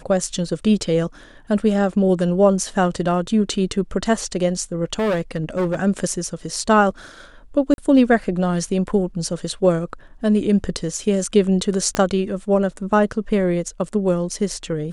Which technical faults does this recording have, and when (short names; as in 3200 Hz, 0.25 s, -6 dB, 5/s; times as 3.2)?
4.99–5.79 clipped -17 dBFS
7.74–7.78 gap 41 ms
11.95 pop -6 dBFS